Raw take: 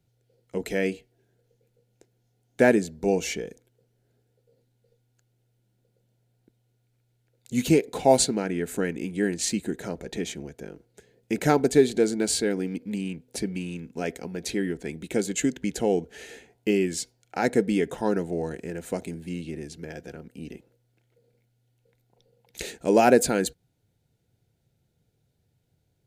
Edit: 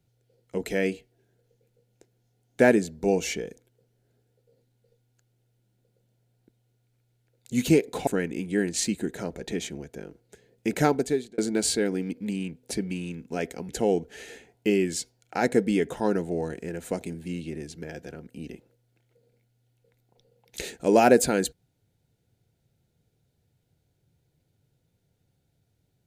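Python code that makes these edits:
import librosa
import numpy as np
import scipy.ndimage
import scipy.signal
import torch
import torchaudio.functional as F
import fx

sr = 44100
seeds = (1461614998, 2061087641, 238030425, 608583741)

y = fx.edit(x, sr, fx.cut(start_s=8.07, length_s=0.65),
    fx.fade_out_span(start_s=11.44, length_s=0.59),
    fx.cut(start_s=14.34, length_s=1.36), tone=tone)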